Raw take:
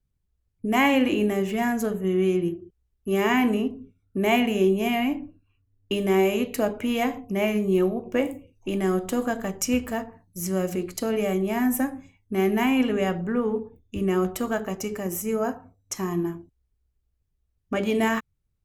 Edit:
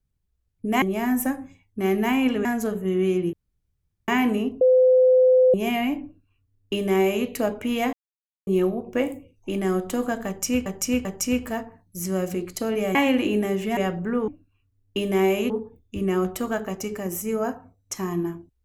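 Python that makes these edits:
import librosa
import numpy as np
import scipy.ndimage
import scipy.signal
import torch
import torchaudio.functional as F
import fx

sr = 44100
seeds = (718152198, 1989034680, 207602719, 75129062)

y = fx.edit(x, sr, fx.swap(start_s=0.82, length_s=0.82, other_s=11.36, other_length_s=1.63),
    fx.room_tone_fill(start_s=2.52, length_s=0.75),
    fx.bleep(start_s=3.8, length_s=0.93, hz=511.0, db=-12.5),
    fx.duplicate(start_s=5.23, length_s=1.22, to_s=13.5),
    fx.silence(start_s=7.12, length_s=0.54),
    fx.repeat(start_s=9.46, length_s=0.39, count=3), tone=tone)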